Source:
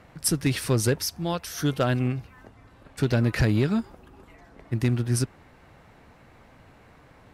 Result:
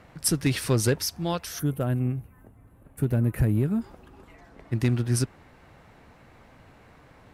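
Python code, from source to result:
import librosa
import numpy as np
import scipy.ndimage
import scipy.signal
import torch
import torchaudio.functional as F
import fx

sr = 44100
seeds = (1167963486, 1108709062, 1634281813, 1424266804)

y = fx.curve_eq(x, sr, hz=(160.0, 2600.0, 5000.0, 11000.0), db=(0, -13, -24, 6), at=(1.58, 3.8), fade=0.02)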